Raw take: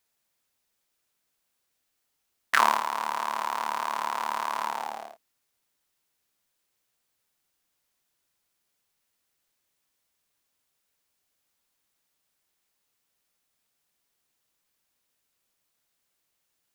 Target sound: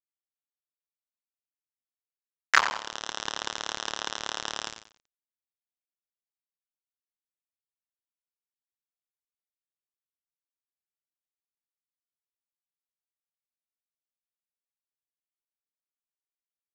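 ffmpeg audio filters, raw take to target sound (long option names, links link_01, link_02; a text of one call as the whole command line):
ffmpeg -i in.wav -filter_complex "[0:a]aeval=exprs='val(0)*gte(abs(val(0)),0.126)':channel_layout=same,asettb=1/sr,asplit=3[link_01][link_02][link_03];[link_01]atrim=end=2.594[link_04];[link_02]atrim=start=2.59:end=3.16,asetpts=PTS-STARTPTS,afade=type=in:duration=0.004:curve=qsin,afade=type=out:start_time=0.566:duration=0.004:curve=qsin,acompressor=threshold=-29dB:ratio=6[link_05];[link_03]atrim=start=3.156[link_06];[link_04][link_05]acrossfade=duration=0.004:curve1=hsin:curve2=qsin[link_07];[link_07][link_06]acrossfade=duration=0.004:curve1=qsin:curve2=hsin,aresample=16000,aresample=44100,asplit=2[link_08][link_09];[link_09]aecho=0:1:91|182|273:0.282|0.0874|0.0271[link_10];[link_08][link_10]amix=inputs=2:normalize=0,volume=3.5dB" out.wav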